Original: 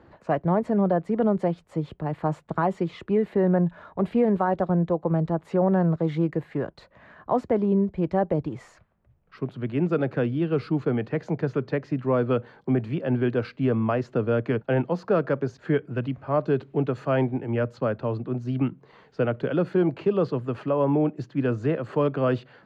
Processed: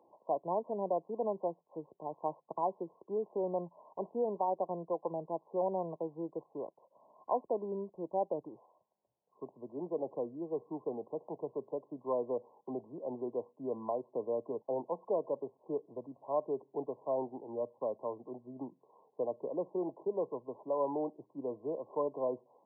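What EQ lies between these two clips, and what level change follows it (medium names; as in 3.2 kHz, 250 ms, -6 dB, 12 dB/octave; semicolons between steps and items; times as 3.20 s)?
high-pass 500 Hz 12 dB/octave; brick-wall FIR low-pass 1.1 kHz; -6.5 dB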